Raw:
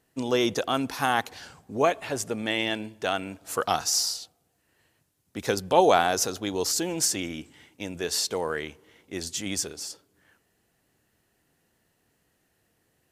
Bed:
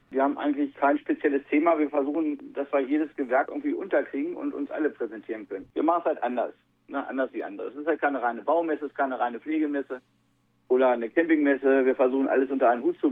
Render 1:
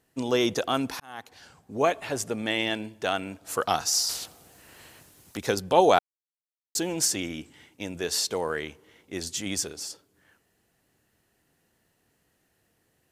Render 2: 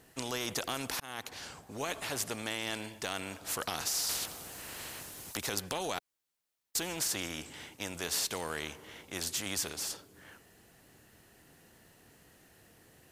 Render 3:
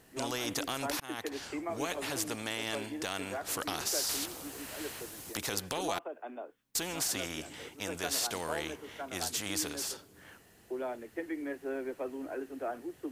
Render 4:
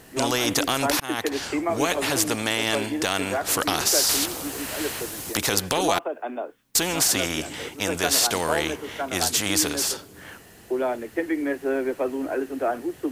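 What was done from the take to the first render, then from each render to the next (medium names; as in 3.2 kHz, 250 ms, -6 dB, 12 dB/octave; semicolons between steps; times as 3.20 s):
1.00–1.94 s: fade in; 4.09–5.37 s: spectrum-flattening compressor 2:1; 5.99–6.75 s: mute
peak limiter -16.5 dBFS, peak gain reduction 11 dB; spectrum-flattening compressor 2:1
add bed -16 dB
trim +12 dB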